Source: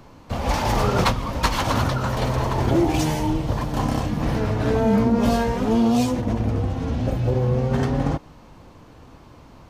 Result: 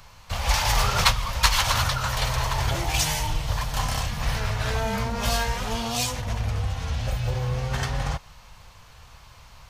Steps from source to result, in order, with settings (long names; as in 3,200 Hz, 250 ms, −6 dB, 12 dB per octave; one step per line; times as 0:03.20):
guitar amp tone stack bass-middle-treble 10-0-10
level +8 dB